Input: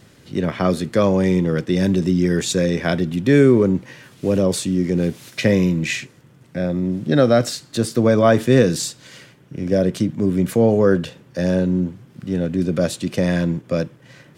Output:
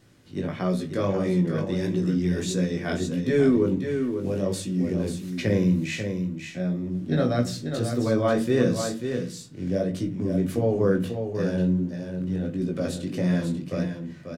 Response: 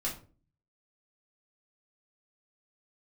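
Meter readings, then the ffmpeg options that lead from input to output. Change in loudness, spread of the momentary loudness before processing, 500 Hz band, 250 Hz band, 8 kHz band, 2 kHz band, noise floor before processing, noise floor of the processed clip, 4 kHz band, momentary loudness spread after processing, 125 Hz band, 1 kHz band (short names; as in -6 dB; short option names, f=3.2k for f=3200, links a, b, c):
-7.0 dB, 10 LU, -7.5 dB, -6.0 dB, -9.0 dB, -8.0 dB, -50 dBFS, -40 dBFS, -8.5 dB, 8 LU, -5.5 dB, -8.0 dB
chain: -filter_complex "[0:a]flanger=delay=16:depth=5.8:speed=1.5,aecho=1:1:540:0.447,asplit=2[a][b];[1:a]atrim=start_sample=2205,lowshelf=f=440:g=5.5[c];[b][c]afir=irnorm=-1:irlink=0,volume=-10dB[d];[a][d]amix=inputs=2:normalize=0,volume=-8.5dB"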